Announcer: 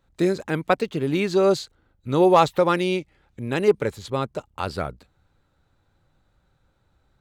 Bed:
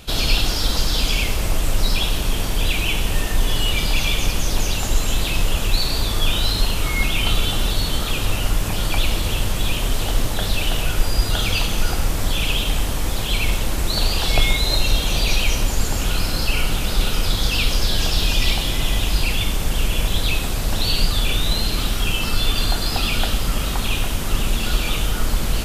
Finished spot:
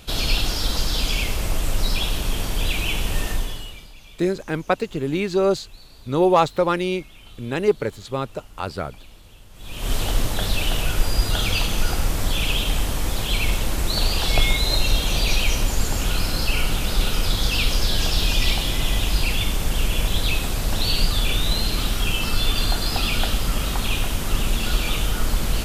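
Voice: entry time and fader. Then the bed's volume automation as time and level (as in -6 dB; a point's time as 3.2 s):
4.00 s, -0.5 dB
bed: 3.31 s -3 dB
3.94 s -26 dB
9.5 s -26 dB
9.91 s -1.5 dB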